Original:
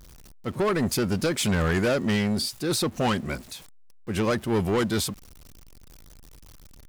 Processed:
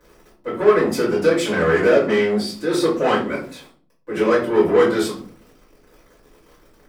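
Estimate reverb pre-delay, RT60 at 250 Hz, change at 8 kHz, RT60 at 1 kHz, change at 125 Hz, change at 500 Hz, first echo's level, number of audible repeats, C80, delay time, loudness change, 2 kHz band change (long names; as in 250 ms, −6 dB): 3 ms, 0.70 s, −3.5 dB, 0.40 s, −3.5 dB, +11.5 dB, no echo audible, no echo audible, 11.5 dB, no echo audible, +7.5 dB, +7.0 dB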